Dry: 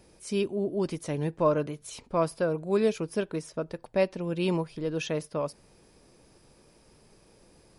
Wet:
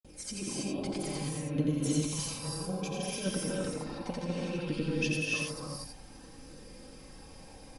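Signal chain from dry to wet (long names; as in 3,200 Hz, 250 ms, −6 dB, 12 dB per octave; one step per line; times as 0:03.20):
parametric band 140 Hz +8 dB 0.4 octaves
comb filter 3.8 ms, depth 63%
compressor whose output falls as the input rises −32 dBFS, ratio −0.5
granular cloud, pitch spread up and down by 0 semitones
flanger 0.61 Hz, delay 0.2 ms, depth 1.2 ms, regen +39%
on a send: single-tap delay 87 ms −4 dB
on the sum: reverb whose tail is shaped and stops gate 350 ms rising, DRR −3 dB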